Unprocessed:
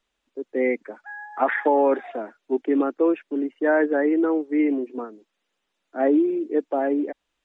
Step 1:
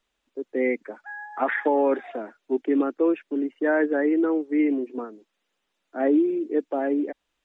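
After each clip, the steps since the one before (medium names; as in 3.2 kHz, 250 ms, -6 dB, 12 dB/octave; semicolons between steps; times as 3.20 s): dynamic bell 810 Hz, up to -4 dB, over -32 dBFS, Q 0.89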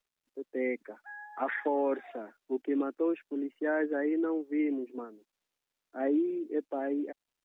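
bit crusher 12-bit; trim -8 dB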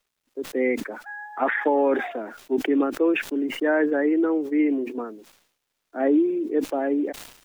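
decay stretcher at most 87 dB/s; trim +8.5 dB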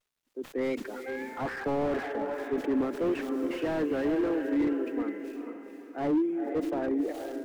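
vibrato 1.7 Hz 87 cents; echo that smears into a reverb 474 ms, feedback 41%, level -7 dB; slew-rate limiter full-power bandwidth 50 Hz; trim -6 dB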